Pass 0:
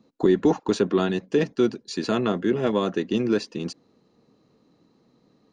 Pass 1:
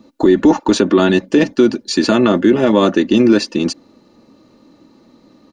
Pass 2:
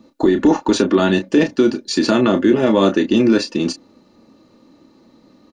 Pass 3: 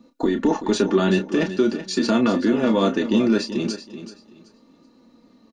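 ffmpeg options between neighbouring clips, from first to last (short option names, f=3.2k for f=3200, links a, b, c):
-af "aecho=1:1:3.4:0.54,alimiter=level_in=13.5dB:limit=-1dB:release=50:level=0:latency=1,volume=-1dB"
-filter_complex "[0:a]asplit=2[a][b];[b]adelay=31,volume=-9dB[c];[a][c]amix=inputs=2:normalize=0,volume=-2.5dB"
-af "flanger=delay=4.1:depth=1.1:regen=44:speed=0.4:shape=sinusoidal,aecho=1:1:380|760|1140:0.251|0.0578|0.0133,volume=-1dB"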